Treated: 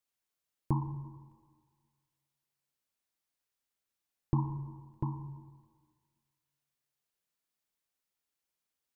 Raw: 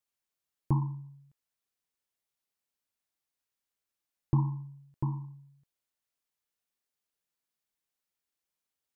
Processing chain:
dynamic equaliser 130 Hz, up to −5 dB, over −40 dBFS, Q 2.1
on a send: convolution reverb RT60 1.6 s, pre-delay 101 ms, DRR 13.5 dB

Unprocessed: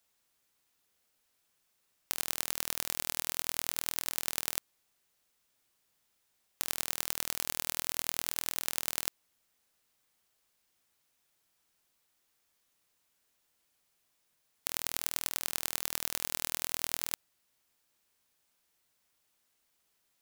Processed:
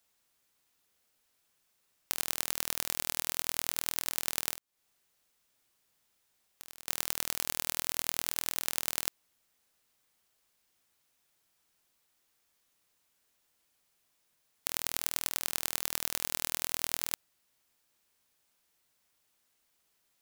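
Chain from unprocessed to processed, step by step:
0:04.54–0:06.88: downward compressor 8 to 1, threshold −43 dBFS, peak gain reduction 17 dB
level +1 dB

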